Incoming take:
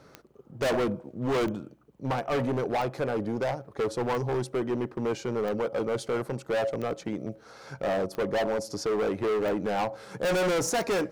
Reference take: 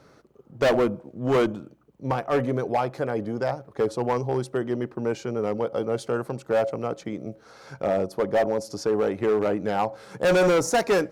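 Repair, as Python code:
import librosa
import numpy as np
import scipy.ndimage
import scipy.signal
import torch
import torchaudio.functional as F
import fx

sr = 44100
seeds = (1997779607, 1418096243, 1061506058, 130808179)

y = fx.fix_declip(x, sr, threshold_db=-24.0)
y = fx.fix_declick_ar(y, sr, threshold=10.0)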